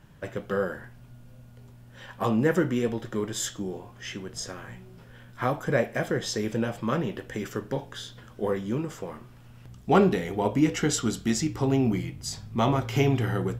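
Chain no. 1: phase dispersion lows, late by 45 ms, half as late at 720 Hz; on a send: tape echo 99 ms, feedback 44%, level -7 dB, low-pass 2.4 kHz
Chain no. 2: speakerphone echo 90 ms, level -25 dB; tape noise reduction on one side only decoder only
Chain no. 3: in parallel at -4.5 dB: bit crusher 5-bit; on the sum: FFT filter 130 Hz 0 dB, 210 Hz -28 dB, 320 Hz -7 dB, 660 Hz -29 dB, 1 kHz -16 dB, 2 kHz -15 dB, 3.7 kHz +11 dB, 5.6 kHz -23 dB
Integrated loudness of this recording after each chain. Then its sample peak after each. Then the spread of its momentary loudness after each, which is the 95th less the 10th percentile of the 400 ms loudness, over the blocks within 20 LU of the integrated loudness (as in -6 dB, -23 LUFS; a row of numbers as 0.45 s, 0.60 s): -27.0 LUFS, -27.5 LUFS, -30.5 LUFS; -9.5 dBFS, -8.0 dBFS, -11.5 dBFS; 15 LU, 15 LU, 15 LU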